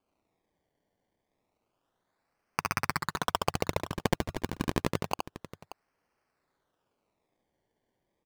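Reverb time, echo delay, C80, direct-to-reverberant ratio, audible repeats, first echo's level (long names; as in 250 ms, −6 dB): no reverb audible, 70 ms, no reverb audible, no reverb audible, 2, −4.5 dB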